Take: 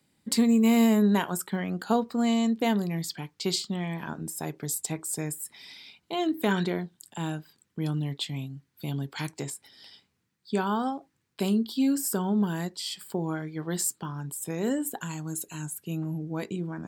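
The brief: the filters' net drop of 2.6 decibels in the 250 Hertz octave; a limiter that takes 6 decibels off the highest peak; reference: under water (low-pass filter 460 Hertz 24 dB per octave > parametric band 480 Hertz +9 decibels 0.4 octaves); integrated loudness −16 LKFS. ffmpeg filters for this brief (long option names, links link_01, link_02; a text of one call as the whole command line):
ffmpeg -i in.wav -af "equalizer=frequency=250:width_type=o:gain=-3.5,alimiter=limit=-18.5dB:level=0:latency=1,lowpass=frequency=460:width=0.5412,lowpass=frequency=460:width=1.3066,equalizer=frequency=480:width_type=o:width=0.4:gain=9,volume=16.5dB" out.wav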